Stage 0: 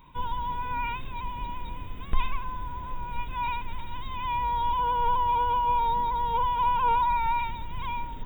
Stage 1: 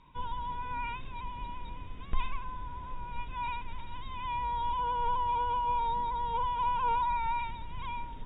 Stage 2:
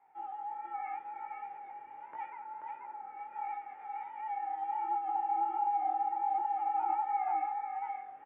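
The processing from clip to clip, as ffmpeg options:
ffmpeg -i in.wav -af "lowpass=frequency=6200:width=0.5412,lowpass=frequency=6200:width=1.3066,volume=-5.5dB" out.wav
ffmpeg -i in.wav -af "aecho=1:1:483:0.668,flanger=delay=17.5:depth=8:speed=1.4,highpass=frequency=570:width_type=q:width=0.5412,highpass=frequency=570:width_type=q:width=1.307,lowpass=frequency=2100:width_type=q:width=0.5176,lowpass=frequency=2100:width_type=q:width=0.7071,lowpass=frequency=2100:width_type=q:width=1.932,afreqshift=-150" out.wav

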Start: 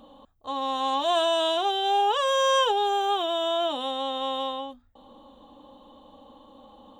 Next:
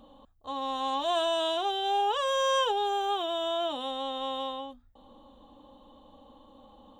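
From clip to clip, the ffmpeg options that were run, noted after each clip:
ffmpeg -i in.wav -af "lowshelf=frequency=99:gain=8,volume=-4.5dB" out.wav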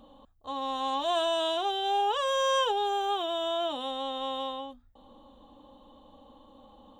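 ffmpeg -i in.wav -af anull out.wav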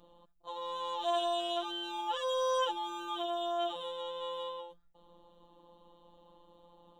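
ffmpeg -i in.wav -af "afftfilt=real='hypot(re,im)*cos(PI*b)':imag='0':win_size=1024:overlap=0.75,volume=-2dB" out.wav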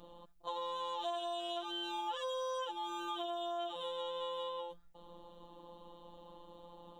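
ffmpeg -i in.wav -af "acompressor=threshold=-42dB:ratio=6,volume=5.5dB" out.wav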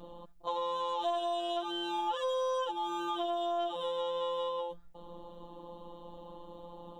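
ffmpeg -i in.wav -af "aeval=exprs='0.0501*(cos(1*acos(clip(val(0)/0.0501,-1,1)))-cos(1*PI/2))+0.000562*(cos(8*acos(clip(val(0)/0.0501,-1,1)))-cos(8*PI/2))':channel_layout=same,tiltshelf=frequency=1300:gain=3.5,volume=4.5dB" out.wav

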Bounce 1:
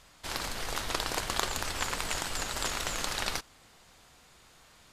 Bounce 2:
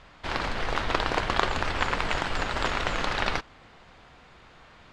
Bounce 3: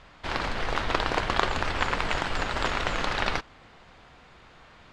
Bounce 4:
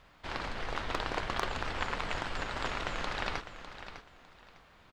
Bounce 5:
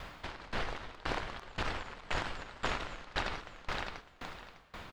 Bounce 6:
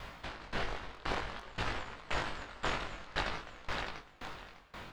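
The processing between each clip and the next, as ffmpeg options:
ffmpeg -i in.wav -af "lowpass=2700,volume=8dB" out.wav
ffmpeg -i in.wav -af anull out.wav
ffmpeg -i in.wav -af "aecho=1:1:603|1206|1809:0.266|0.0639|0.0153,acrusher=bits=11:mix=0:aa=0.000001,aeval=exprs='0.501*(abs(mod(val(0)/0.501+3,4)-2)-1)':channel_layout=same,volume=-8dB" out.wav
ffmpeg -i in.wav -af "alimiter=level_in=0.5dB:limit=-24dB:level=0:latency=1:release=66,volume=-0.5dB,acompressor=threshold=-44dB:ratio=5,aeval=exprs='val(0)*pow(10,-23*if(lt(mod(1.9*n/s,1),2*abs(1.9)/1000),1-mod(1.9*n/s,1)/(2*abs(1.9)/1000),(mod(1.9*n/s,1)-2*abs(1.9)/1000)/(1-2*abs(1.9)/1000))/20)':channel_layout=same,volume=16dB" out.wav
ffmpeg -i in.wav -af "flanger=delay=17.5:depth=4.2:speed=0.55,volume=3dB" out.wav

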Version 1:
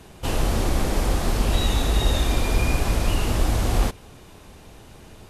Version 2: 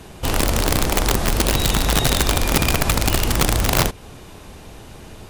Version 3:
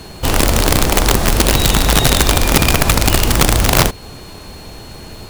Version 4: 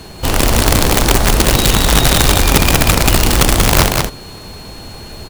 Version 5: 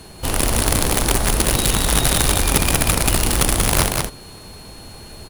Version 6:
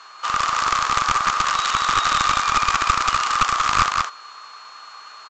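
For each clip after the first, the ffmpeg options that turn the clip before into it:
ffmpeg -i in.wav -filter_complex "[0:a]asplit=2[link_01][link_02];[link_02]acompressor=threshold=-26dB:ratio=10,volume=0dB[link_03];[link_01][link_03]amix=inputs=2:normalize=0,aeval=exprs='(mod(3.55*val(0)+1,2)-1)/3.55':channel_layout=same" out.wav
ffmpeg -i in.wav -af "aeval=exprs='val(0)+0.00501*sin(2*PI*4300*n/s)':channel_layout=same,acrusher=bits=4:mode=log:mix=0:aa=0.000001,volume=5.5dB" out.wav
ffmpeg -i in.wav -af "aecho=1:1:187:0.631" out.wav
ffmpeg -i in.wav -af "equalizer=frequency=10000:width=3.5:gain=10.5,volume=-7dB" out.wav
ffmpeg -i in.wav -af "highpass=frequency=1200:width_type=q:width=9.9,aresample=16000,aeval=exprs='clip(val(0),-1,0.237)':channel_layout=same,aresample=44100,volume=-2.5dB" out.wav

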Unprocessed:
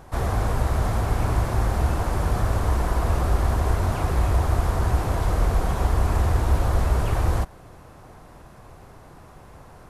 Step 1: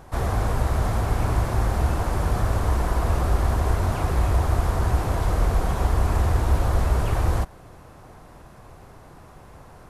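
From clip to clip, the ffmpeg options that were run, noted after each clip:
ffmpeg -i in.wav -af anull out.wav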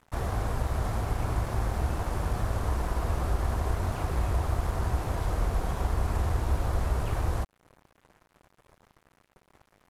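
ffmpeg -i in.wav -filter_complex "[0:a]asplit=2[link_01][link_02];[link_02]acompressor=threshold=-28dB:ratio=4,volume=-2dB[link_03];[link_01][link_03]amix=inputs=2:normalize=0,aeval=exprs='sgn(val(0))*max(abs(val(0))-0.015,0)':channel_layout=same,volume=-8dB" out.wav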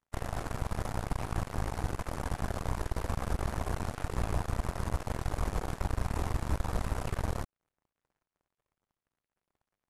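ffmpeg -i in.wav -af "highshelf=frequency=6300:gain=5,aeval=exprs='0.188*(cos(1*acos(clip(val(0)/0.188,-1,1)))-cos(1*PI/2))+0.00106*(cos(3*acos(clip(val(0)/0.188,-1,1)))-cos(3*PI/2))+0.0299*(cos(6*acos(clip(val(0)/0.188,-1,1)))-cos(6*PI/2))+0.0237*(cos(7*acos(clip(val(0)/0.188,-1,1)))-cos(7*PI/2))':channel_layout=same,lowpass=11000,volume=-5.5dB" out.wav

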